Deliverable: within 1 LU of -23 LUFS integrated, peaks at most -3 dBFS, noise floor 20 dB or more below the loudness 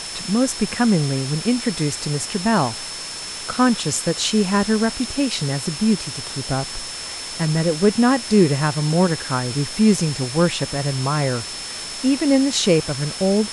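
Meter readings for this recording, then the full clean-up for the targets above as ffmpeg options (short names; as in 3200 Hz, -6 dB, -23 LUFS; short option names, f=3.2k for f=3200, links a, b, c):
steady tone 5300 Hz; tone level -32 dBFS; noise floor -31 dBFS; noise floor target -40 dBFS; loudness -20.0 LUFS; peak -3.5 dBFS; loudness target -23.0 LUFS
-> -af "bandreject=f=5.3k:w=30"
-af "afftdn=nr=9:nf=-31"
-af "volume=-3dB"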